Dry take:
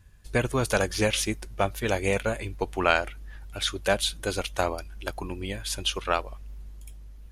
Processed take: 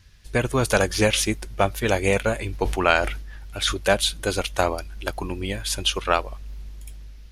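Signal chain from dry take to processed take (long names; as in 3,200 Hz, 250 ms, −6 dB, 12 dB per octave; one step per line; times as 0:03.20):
automatic gain control gain up to 3.5 dB
noise in a band 1,400–5,900 Hz −65 dBFS
0:02.42–0:03.77: level that may fall only so fast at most 65 dB per second
level +1.5 dB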